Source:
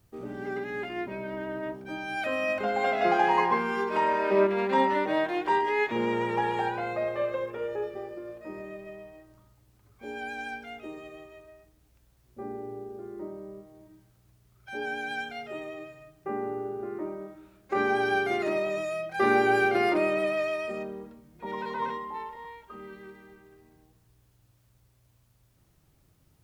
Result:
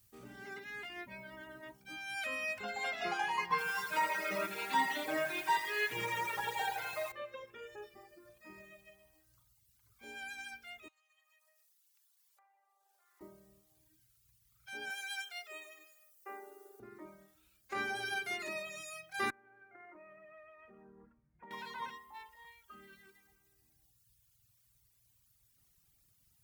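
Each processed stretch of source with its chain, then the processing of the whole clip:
3.50–7.12 s: comb 6.5 ms, depth 95% + bit-crushed delay 84 ms, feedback 80%, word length 8-bit, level -6 dB
10.88–13.21 s: self-modulated delay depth 0.075 ms + steep high-pass 710 Hz + compression 16:1, threshold -56 dBFS
14.90–16.80 s: high-pass 380 Hz 24 dB/octave + treble shelf 5.7 kHz +7 dB
19.30–21.51 s: inverse Chebyshev low-pass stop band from 4.6 kHz, stop band 50 dB + compression 10:1, threshold -37 dBFS
whole clip: treble shelf 6.5 kHz +8 dB; reverb removal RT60 1.8 s; amplifier tone stack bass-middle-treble 5-5-5; trim +5 dB

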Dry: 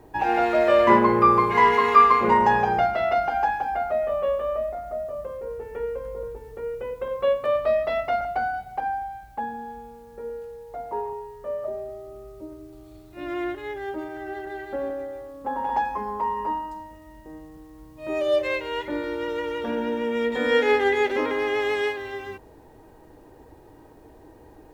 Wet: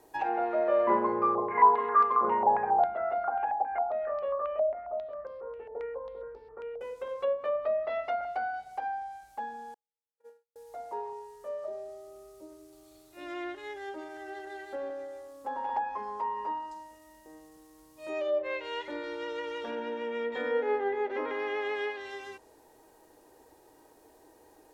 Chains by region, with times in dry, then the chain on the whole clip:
1.35–6.81 s: hard clipper -10 dBFS + distance through air 440 m + step-sequenced low-pass 7.4 Hz 710–4900 Hz
9.74–10.56 s: high-pass 880 Hz 6 dB/octave + treble shelf 4.1 kHz -10.5 dB + gate -40 dBFS, range -47 dB
whole clip: low-pass that closes with the level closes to 1.1 kHz, closed at -18.5 dBFS; tone controls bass -14 dB, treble +11 dB; trim -6.5 dB

